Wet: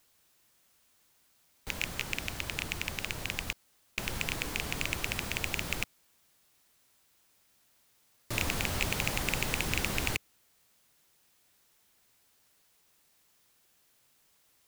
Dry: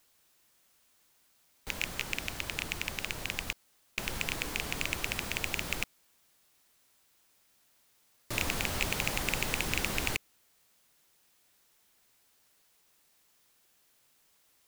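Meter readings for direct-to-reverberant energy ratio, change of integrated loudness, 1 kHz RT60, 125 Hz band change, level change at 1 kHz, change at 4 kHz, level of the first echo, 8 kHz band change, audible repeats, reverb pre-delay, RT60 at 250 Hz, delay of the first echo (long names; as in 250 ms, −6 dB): no reverb audible, 0.0 dB, no reverb audible, +3.0 dB, 0.0 dB, 0.0 dB, no echo audible, 0.0 dB, no echo audible, no reverb audible, no reverb audible, no echo audible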